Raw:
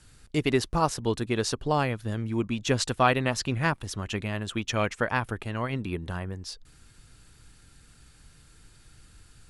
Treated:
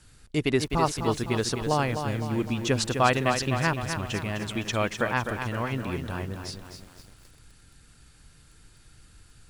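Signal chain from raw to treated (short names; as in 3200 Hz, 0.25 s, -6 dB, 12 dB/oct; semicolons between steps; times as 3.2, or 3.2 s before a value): lo-fi delay 0.255 s, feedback 55%, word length 8-bit, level -7 dB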